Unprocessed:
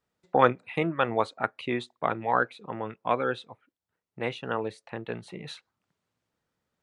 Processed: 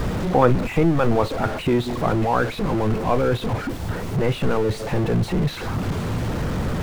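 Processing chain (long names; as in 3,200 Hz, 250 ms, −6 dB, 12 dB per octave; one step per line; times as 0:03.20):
converter with a step at zero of −23 dBFS
spectral tilt −3.5 dB per octave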